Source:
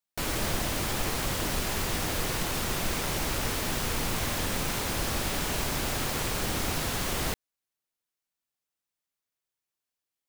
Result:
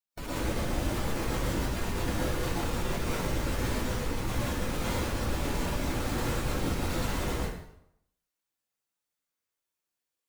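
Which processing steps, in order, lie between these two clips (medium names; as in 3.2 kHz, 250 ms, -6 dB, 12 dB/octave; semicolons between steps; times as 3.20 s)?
spectral contrast enhancement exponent 1.6; plate-style reverb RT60 0.74 s, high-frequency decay 0.8×, pre-delay 95 ms, DRR -7.5 dB; trim -6.5 dB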